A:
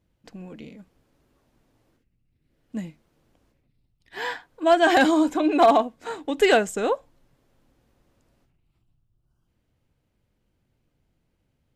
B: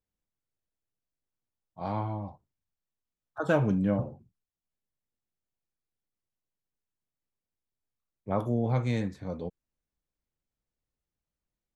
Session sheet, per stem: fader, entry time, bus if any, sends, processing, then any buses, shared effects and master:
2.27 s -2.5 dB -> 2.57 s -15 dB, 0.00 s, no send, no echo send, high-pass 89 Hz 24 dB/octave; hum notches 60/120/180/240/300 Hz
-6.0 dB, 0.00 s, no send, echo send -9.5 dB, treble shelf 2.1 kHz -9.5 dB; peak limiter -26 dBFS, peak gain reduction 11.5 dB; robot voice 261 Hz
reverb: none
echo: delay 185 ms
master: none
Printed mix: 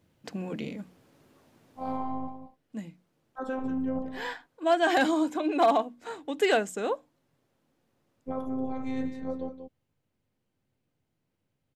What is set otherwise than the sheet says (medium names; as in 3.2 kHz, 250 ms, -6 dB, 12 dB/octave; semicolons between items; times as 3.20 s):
stem A -2.5 dB -> +6.5 dB; stem B -6.0 dB -> +5.0 dB